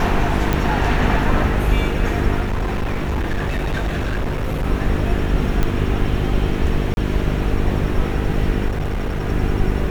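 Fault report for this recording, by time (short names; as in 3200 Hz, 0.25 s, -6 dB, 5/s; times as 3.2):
buzz 50 Hz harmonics 9 -23 dBFS
0.53 pop
2.4–4.66 clipped -17.5 dBFS
5.63 pop -7 dBFS
6.94–6.97 gap 31 ms
8.68–9.29 clipped -18 dBFS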